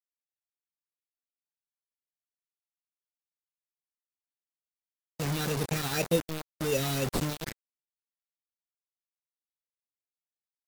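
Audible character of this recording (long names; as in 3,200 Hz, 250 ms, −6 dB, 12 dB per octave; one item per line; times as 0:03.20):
aliases and images of a low sample rate 3,200 Hz, jitter 0%
phaser sweep stages 6, 2 Hz, lowest notch 560–2,000 Hz
a quantiser's noise floor 6 bits, dither none
MP3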